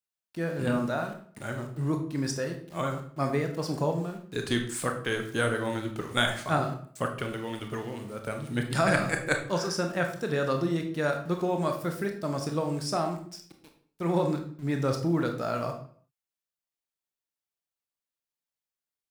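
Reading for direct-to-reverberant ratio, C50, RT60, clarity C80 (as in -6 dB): 4.0 dB, 8.0 dB, 0.50 s, 12.0 dB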